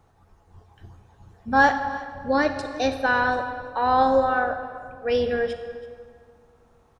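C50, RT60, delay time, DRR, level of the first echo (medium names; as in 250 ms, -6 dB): 8.0 dB, 2.1 s, 329 ms, 7.5 dB, -19.5 dB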